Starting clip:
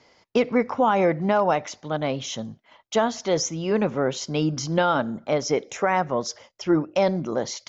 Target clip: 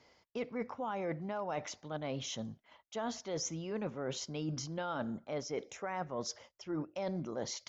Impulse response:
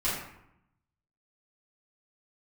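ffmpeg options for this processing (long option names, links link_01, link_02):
-af "equalizer=frequency=69:width_type=o:width=0.77:gain=5.5,areverse,acompressor=threshold=-27dB:ratio=6,areverse,volume=-8dB"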